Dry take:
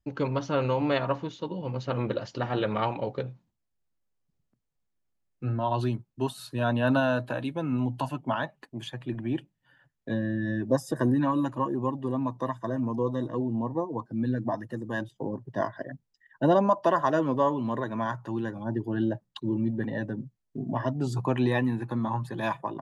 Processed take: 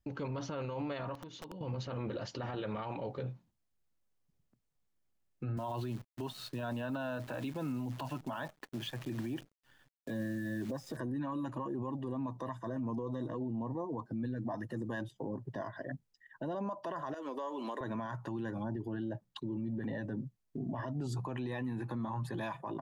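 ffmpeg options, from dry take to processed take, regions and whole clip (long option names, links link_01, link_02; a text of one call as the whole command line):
ffmpeg -i in.wav -filter_complex "[0:a]asettb=1/sr,asplit=3[link_01][link_02][link_03];[link_01]atrim=end=1.154[link_04];[link_02]atrim=start=1.15:end=1.61,asetpts=PTS-STARTPTS,afade=type=in:duration=0.004:curve=qsin,afade=type=out:start_time=0.456:duration=0.004:curve=qsin,bandreject=frequency=3800:width=23,acompressor=threshold=-42dB:ratio=16:attack=3.2:release=140:knee=1:detection=peak,aeval=exprs='(mod(79.4*val(0)+1,2)-1)/79.4':channel_layout=same[link_05];[link_03]atrim=start=1.606[link_06];[link_04][link_05]acrossfade=duration=0.004:curve1=hsin:curve2=qsin[link_07];[link_07][link_06]acrossfade=duration=0.004:curve1=qsin:curve2=hsin,asettb=1/sr,asplit=3[link_08][link_09][link_10];[link_08]atrim=end=5.574[link_11];[link_09]atrim=start=5.57:end=10.97,asetpts=PTS-STARTPTS,afade=type=in:duration=0.004:curve=qsin,afade=type=out:start_time=5.396:duration=0.004:curve=qsin,highpass=100,lowpass=5200,acrusher=bits=9:dc=4:mix=0:aa=0.000001[link_12];[link_10]atrim=start=10.966[link_13];[link_11][link_12]acrossfade=duration=0.004:curve1=hsin:curve2=qsin[link_14];[link_14][link_13]acrossfade=duration=0.004:curve1=qsin:curve2=hsin,asettb=1/sr,asplit=3[link_15][link_16][link_17];[link_15]atrim=end=17.144[link_18];[link_16]atrim=start=17.14:end=17.81,asetpts=PTS-STARTPTS,afade=type=in:duration=0.004:curve=qsin,afade=type=out:start_time=0.666:duration=0.004:curve=qsin,highpass=frequency=310:width=0.5412,highpass=frequency=310:width=1.3066,highshelf=frequency=3200:gain=10,acompressor=threshold=-35dB:ratio=8:attack=3.2:release=140:knee=1:detection=peak[link_19];[link_17]atrim=start=17.806[link_20];[link_18][link_19]acrossfade=duration=0.004:curve1=hsin:curve2=qsin[link_21];[link_21][link_20]acrossfade=duration=0.004:curve1=qsin:curve2=hsin,acompressor=threshold=-29dB:ratio=4,alimiter=level_in=6.5dB:limit=-24dB:level=0:latency=1:release=29,volume=-6.5dB" out.wav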